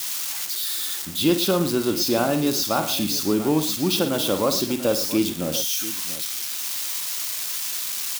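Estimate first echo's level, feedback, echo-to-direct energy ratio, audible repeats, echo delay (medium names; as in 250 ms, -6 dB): -10.5 dB, no regular repeats, -8.0 dB, 3, 52 ms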